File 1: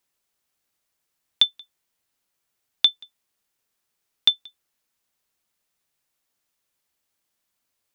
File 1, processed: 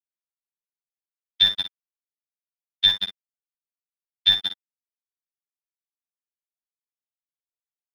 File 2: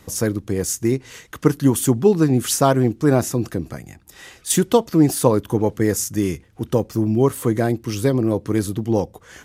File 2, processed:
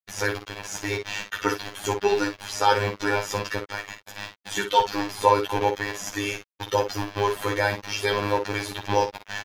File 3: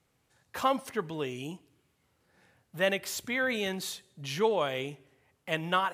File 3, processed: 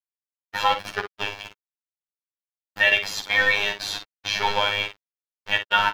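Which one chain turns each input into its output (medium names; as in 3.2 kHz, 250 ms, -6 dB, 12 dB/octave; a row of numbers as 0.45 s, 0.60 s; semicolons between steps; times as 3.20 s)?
high-pass 44 Hz 6 dB/octave; differentiator; comb 2.2 ms, depth 93%; reverse; compression 16:1, threshold -31 dBFS; reverse; bit crusher 7-bit; robot voice 102 Hz; in parallel at -7 dB: wavefolder -22 dBFS; on the sum: distance through air 270 m; early reflections 11 ms -3.5 dB, 57 ms -8.5 dB; peak normalisation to -3 dBFS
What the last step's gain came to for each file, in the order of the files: +25.0 dB, +18.5 dB, +21.0 dB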